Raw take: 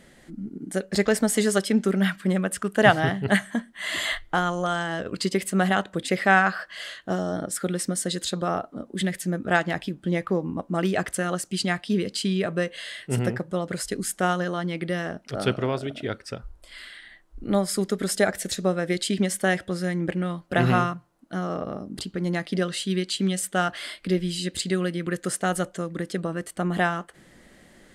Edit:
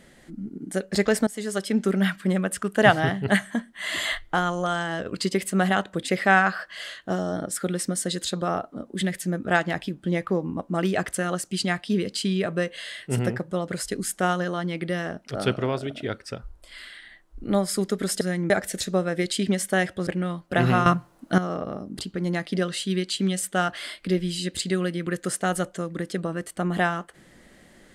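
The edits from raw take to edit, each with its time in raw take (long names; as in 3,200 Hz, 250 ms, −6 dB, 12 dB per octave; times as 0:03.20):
0:01.27–0:01.88: fade in, from −18 dB
0:19.78–0:20.07: move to 0:18.21
0:20.86–0:21.38: clip gain +11 dB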